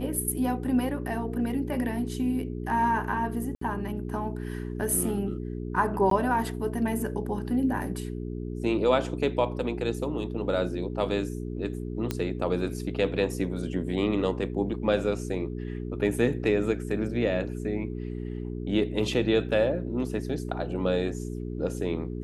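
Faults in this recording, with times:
hum 60 Hz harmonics 7 -34 dBFS
3.55–3.61 s: dropout 64 ms
6.10–6.11 s: dropout 13 ms
12.11 s: pop -14 dBFS
19.49 s: dropout 2.7 ms

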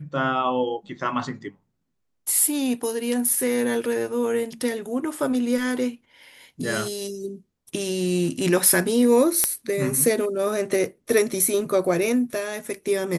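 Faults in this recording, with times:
9.44 s: pop -4 dBFS

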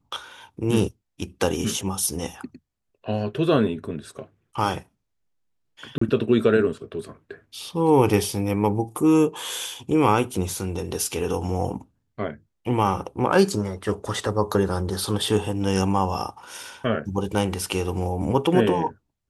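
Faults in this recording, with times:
5.98–6.01 s: dropout 34 ms

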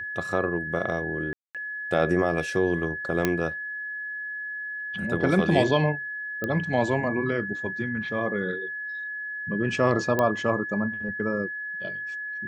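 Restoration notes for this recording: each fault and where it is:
whine 1.7 kHz -31 dBFS
1.33–1.55 s: dropout 217 ms
3.25 s: pop -8 dBFS
6.44 s: pop -16 dBFS
10.19 s: pop -11 dBFS

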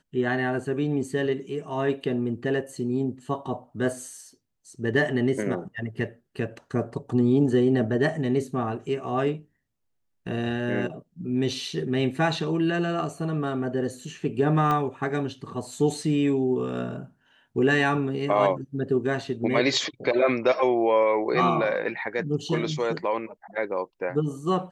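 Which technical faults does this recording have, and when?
14.71 s: pop -14 dBFS

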